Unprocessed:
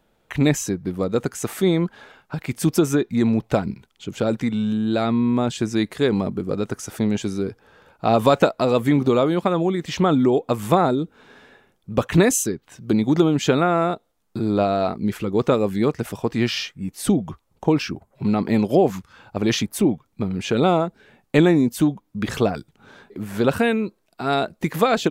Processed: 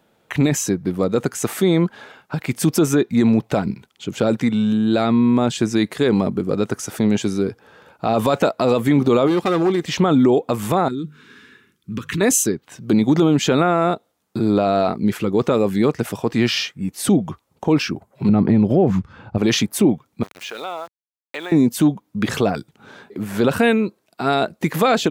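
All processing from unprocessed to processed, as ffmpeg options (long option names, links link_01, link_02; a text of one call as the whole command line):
ffmpeg -i in.wav -filter_complex "[0:a]asettb=1/sr,asplit=3[link_01][link_02][link_03];[link_01]atrim=end=9.274[link_04];[link_02]atrim=start=9.27:end=9.85,asetpts=PTS-STARTPTS,afade=type=in:duration=0.004:curve=qsin,afade=type=out:start_time=0.576:duration=0.004:curve=qsin,volume=18.5dB,asoftclip=hard,volume=-18.5dB,aecho=1:1:2.5:0.34,atrim=end_sample=25578[link_05];[link_03]atrim=start=9.846[link_06];[link_04][link_05]acrossfade=duration=0.004:curve1=hsin:curve2=qsin[link_07];[link_07][link_06]acrossfade=duration=0.004:curve1=qsin:curve2=hsin,asettb=1/sr,asplit=3[link_08][link_09][link_10];[link_08]atrim=end=10.884[link_11];[link_09]atrim=start=10.88:end=12.21,asetpts=PTS-STARTPTS,afade=type=in:duration=0.004:curve=qsin,afade=type=out:start_time=1.326:duration=0.004:curve=qsin,bandreject=frequency=50:width_type=h:width=6,bandreject=frequency=100:width_type=h:width=6,bandreject=frequency=150:width_type=h:width=6,acompressor=threshold=-25dB:ratio=4:attack=3.2:release=140:knee=1:detection=peak,asuperstop=centerf=670:order=4:qfactor=0.77[link_12];[link_10]atrim=start=12.206[link_13];[link_11][link_12]acrossfade=duration=0.004:curve1=hsin:curve2=qsin[link_14];[link_14][link_13]acrossfade=duration=0.004:curve1=qsin:curve2=hsin,asettb=1/sr,asplit=3[link_15][link_16][link_17];[link_15]atrim=end=18.294[link_18];[link_16]atrim=start=18.29:end=19.38,asetpts=PTS-STARTPTS,afade=type=in:duration=0.004:curve=qsin,afade=type=out:start_time=1.086:duration=0.004:curve=qsin,aemphasis=mode=reproduction:type=riaa,acompressor=threshold=-13dB:ratio=6:attack=3.2:release=140:knee=1:detection=peak[link_19];[link_17]atrim=start=19.376[link_20];[link_18][link_19]acrossfade=duration=0.004:curve1=hsin:curve2=qsin[link_21];[link_21][link_20]acrossfade=duration=0.004:curve1=qsin:curve2=hsin,asettb=1/sr,asplit=3[link_22][link_23][link_24];[link_22]atrim=end=20.234[link_25];[link_23]atrim=start=20.23:end=21.52,asetpts=PTS-STARTPTS,afade=type=in:duration=0.004:curve=qsin,afade=type=out:start_time=1.286:duration=0.004:curve=qsin,highpass=780,lowpass=6500,aeval=exprs='val(0)*gte(abs(val(0)),0.0126)':channel_layout=same,acompressor=threshold=-37dB:ratio=2:attack=3.2:release=140:knee=1:detection=peak[link_26];[link_24]atrim=start=21.516[link_27];[link_25][link_26]acrossfade=duration=0.004:curve1=hsin:curve2=qsin[link_28];[link_28][link_27]acrossfade=duration=0.004:curve1=qsin:curve2=hsin,highpass=100,alimiter=limit=-11dB:level=0:latency=1:release=24,volume=4.5dB" out.wav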